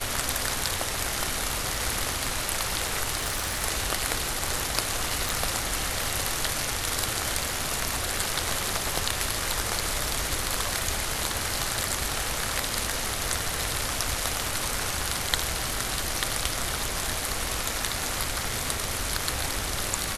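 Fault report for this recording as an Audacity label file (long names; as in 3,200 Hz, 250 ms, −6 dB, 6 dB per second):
3.170000	3.650000	clipping −23 dBFS
5.290000	5.290000	click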